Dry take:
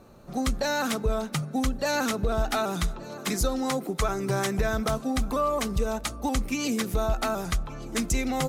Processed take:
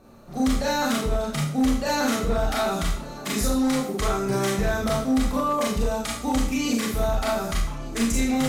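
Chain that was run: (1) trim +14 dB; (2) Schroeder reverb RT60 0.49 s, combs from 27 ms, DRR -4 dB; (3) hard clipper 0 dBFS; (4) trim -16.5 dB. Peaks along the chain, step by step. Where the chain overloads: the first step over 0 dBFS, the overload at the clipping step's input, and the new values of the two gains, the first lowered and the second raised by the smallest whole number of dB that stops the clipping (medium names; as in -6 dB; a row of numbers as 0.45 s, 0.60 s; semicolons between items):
-2.0 dBFS, +7.0 dBFS, 0.0 dBFS, -16.5 dBFS; step 2, 7.0 dB; step 1 +7 dB, step 4 -9.5 dB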